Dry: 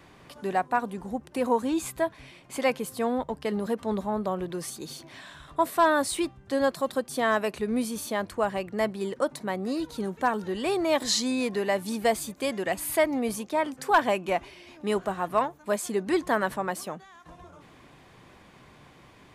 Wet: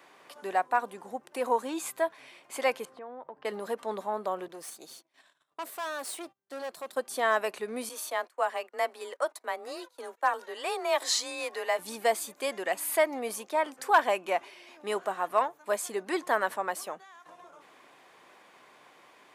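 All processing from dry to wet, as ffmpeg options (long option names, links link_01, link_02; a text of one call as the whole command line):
ffmpeg -i in.wav -filter_complex "[0:a]asettb=1/sr,asplit=3[link_01][link_02][link_03];[link_01]atrim=end=2.854[link_04];[link_02]atrim=start=2.85:end=3.45,asetpts=PTS-STARTPTS,afade=type=in:duration=0.004:curve=qsin,afade=type=out:start_time=0.596:duration=0.004:curve=qsin,lowpass=1700,acompressor=threshold=-35dB:ratio=12:attack=3.2:release=140:knee=1:detection=peak[link_05];[link_03]atrim=start=3.446[link_06];[link_04][link_05]acrossfade=duration=0.004:curve1=hsin:curve2=qsin[link_07];[link_07][link_06]acrossfade=duration=0.004:curve1=qsin:curve2=hsin,asettb=1/sr,asplit=3[link_08][link_09][link_10];[link_08]atrim=end=4.484[link_11];[link_09]atrim=start=4.48:end=6.97,asetpts=PTS-STARTPTS,afade=type=in:duration=0.004:curve=qsin,afade=type=out:start_time=2.486:duration=0.004:curve=qsin,agate=range=-23dB:threshold=-45dB:ratio=16:release=100:detection=peak,equalizer=frequency=1300:width=0.47:gain=-4.5,aeval=exprs='(tanh(35.5*val(0)+0.75)-tanh(0.75))/35.5':channel_layout=same[link_12];[link_10]atrim=start=6.966[link_13];[link_11][link_12]acrossfade=duration=0.004:curve1=hsin:curve2=qsin[link_14];[link_14][link_13]acrossfade=duration=0.004:curve1=qsin:curve2=hsin,asettb=1/sr,asplit=3[link_15][link_16][link_17];[link_15]atrim=end=7.894[link_18];[link_16]atrim=start=7.89:end=11.79,asetpts=PTS-STARTPTS,afade=type=in:duration=0.004:curve=qsin,afade=type=out:start_time=3.896:duration=0.004:curve=qsin,agate=range=-21dB:threshold=-40dB:ratio=16:release=100:detection=peak,highpass=460,afreqshift=29[link_19];[link_17]atrim=start=11.786[link_20];[link_18][link_19]acrossfade=duration=0.004:curve1=hsin:curve2=qsin[link_21];[link_21][link_20]acrossfade=duration=0.004:curve1=qsin:curve2=hsin,highpass=490,equalizer=frequency=4200:width_type=o:width=1.6:gain=-2.5" out.wav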